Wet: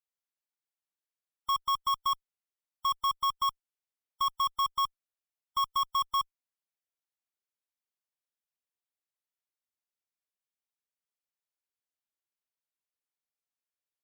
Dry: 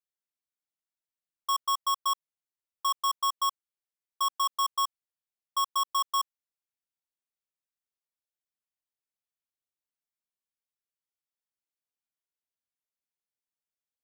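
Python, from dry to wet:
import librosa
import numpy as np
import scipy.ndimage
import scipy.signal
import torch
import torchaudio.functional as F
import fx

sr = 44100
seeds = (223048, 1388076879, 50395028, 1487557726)

y = fx.bass_treble(x, sr, bass_db=-8, treble_db=-2)
y = fx.spec_gate(y, sr, threshold_db=-30, keep='strong')
y = fx.cheby_harmonics(y, sr, harmonics=(2, 3, 6, 7), levels_db=(-38, -7, -25, -25), full_scale_db=-23.5)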